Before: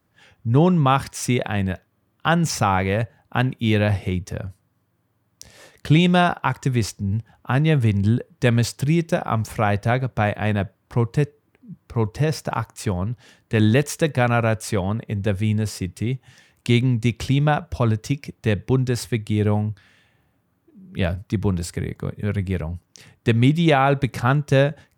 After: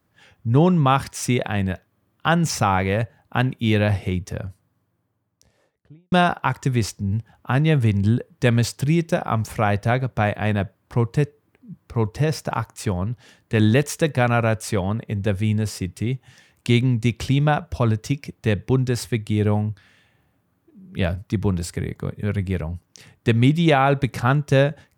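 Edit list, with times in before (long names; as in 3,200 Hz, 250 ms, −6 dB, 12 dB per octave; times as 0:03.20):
0:04.38–0:06.12: fade out and dull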